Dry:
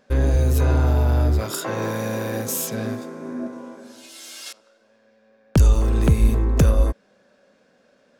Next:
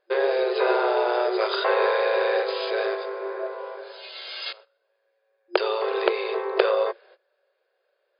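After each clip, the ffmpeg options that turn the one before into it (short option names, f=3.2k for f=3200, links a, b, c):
-af "agate=range=-19dB:threshold=-49dB:ratio=16:detection=peak,afftfilt=real='re*between(b*sr/4096,350,5000)':imag='im*between(b*sr/4096,350,5000)':win_size=4096:overlap=0.75,volume=6.5dB"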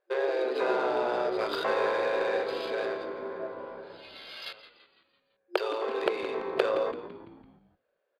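-filter_complex "[0:a]asplit=6[a][b][c][d][e][f];[b]adelay=168,afreqshift=-70,volume=-12dB[g];[c]adelay=336,afreqshift=-140,volume=-17.8dB[h];[d]adelay=504,afreqshift=-210,volume=-23.7dB[i];[e]adelay=672,afreqshift=-280,volume=-29.5dB[j];[f]adelay=840,afreqshift=-350,volume=-35.4dB[k];[a][g][h][i][j][k]amix=inputs=6:normalize=0,adynamicsmooth=sensitivity=3.5:basefreq=3.8k,volume=-6dB"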